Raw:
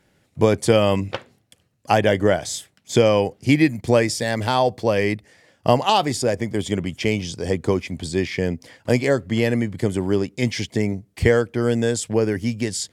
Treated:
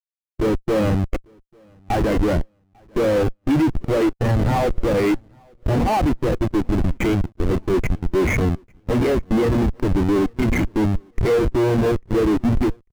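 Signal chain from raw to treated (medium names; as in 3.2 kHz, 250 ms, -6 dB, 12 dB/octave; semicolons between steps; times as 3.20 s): cabinet simulation 130–2900 Hz, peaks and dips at 330 Hz +7 dB, 620 Hz -5 dB, 950 Hz -3 dB, 2.1 kHz +9 dB; de-hum 241 Hz, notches 4; Schmitt trigger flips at -25 dBFS; on a send: feedback delay 846 ms, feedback 41%, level -21 dB; on the sum: spectral contrast expander 1.5:1; trim +3.5 dB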